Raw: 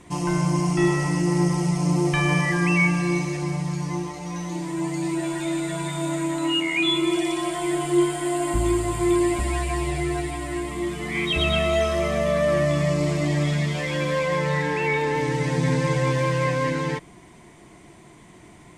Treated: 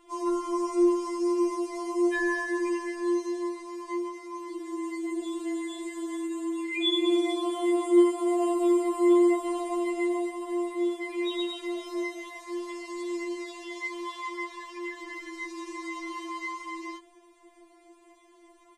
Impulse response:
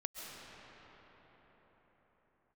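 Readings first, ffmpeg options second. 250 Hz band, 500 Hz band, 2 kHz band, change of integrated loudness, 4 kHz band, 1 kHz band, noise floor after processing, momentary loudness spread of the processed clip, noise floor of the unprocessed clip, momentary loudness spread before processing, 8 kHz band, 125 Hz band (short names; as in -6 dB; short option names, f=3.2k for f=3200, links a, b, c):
-3.0 dB, -4.0 dB, -9.0 dB, -5.5 dB, -7.0 dB, -6.5 dB, -58 dBFS, 14 LU, -48 dBFS, 7 LU, -11.0 dB, under -40 dB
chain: -af "aresample=32000,aresample=44100,afftfilt=real='re*4*eq(mod(b,16),0)':imag='im*4*eq(mod(b,16),0)':win_size=2048:overlap=0.75,volume=-8.5dB"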